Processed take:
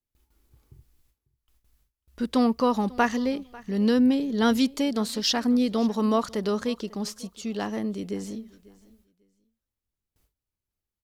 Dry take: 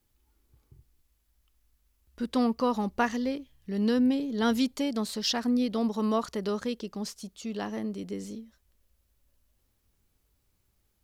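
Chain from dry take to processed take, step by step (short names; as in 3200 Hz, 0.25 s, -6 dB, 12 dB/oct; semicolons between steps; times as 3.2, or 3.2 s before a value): gate with hold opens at -59 dBFS; feedback echo 0.545 s, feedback 21%, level -22 dB; gain +4 dB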